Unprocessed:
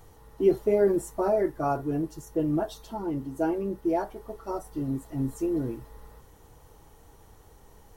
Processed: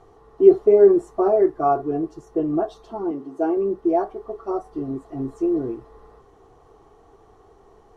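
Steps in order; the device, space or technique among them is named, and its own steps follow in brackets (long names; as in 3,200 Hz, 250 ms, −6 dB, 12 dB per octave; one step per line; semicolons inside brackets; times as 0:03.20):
inside a cardboard box (low-pass filter 5,800 Hz 12 dB per octave; hollow resonant body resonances 400/710/1,100 Hz, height 15 dB, ringing for 25 ms)
0:03.11–0:03.57: high-pass filter 220 Hz 12 dB per octave
level −4.5 dB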